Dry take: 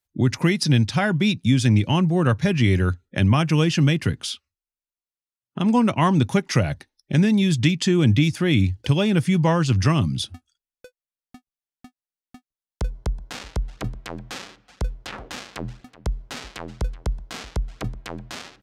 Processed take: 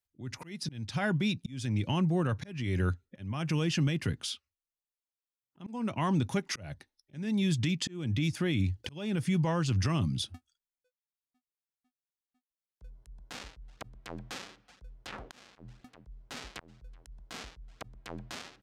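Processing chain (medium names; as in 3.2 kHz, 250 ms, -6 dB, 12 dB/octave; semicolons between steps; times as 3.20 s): peak limiter -13.5 dBFS, peak gain reduction 8 dB; slow attack 345 ms; trim -7 dB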